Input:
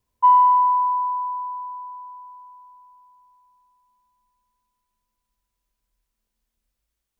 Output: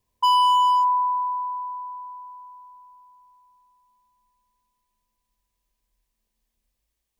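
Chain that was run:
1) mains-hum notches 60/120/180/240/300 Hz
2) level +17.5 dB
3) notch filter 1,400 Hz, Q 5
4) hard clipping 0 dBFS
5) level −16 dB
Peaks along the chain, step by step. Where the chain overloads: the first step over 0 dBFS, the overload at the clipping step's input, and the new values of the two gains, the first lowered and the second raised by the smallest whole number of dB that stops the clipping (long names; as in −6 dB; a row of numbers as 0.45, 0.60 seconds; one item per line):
−8.0, +9.5, +9.0, 0.0, −16.0 dBFS
step 2, 9.0 dB
step 2 +8.5 dB, step 5 −7 dB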